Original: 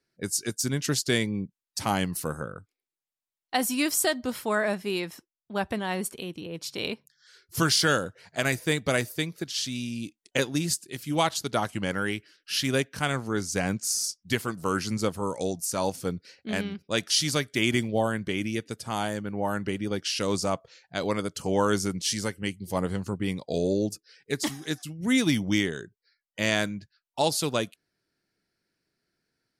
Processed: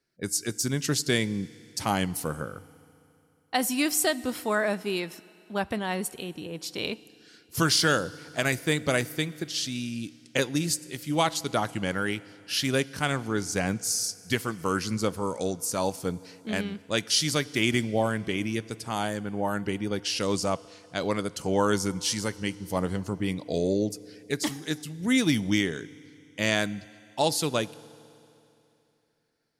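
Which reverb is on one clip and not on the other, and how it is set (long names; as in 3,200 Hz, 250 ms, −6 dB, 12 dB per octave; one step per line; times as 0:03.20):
feedback delay network reverb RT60 2.9 s, high-frequency decay 0.95×, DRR 19 dB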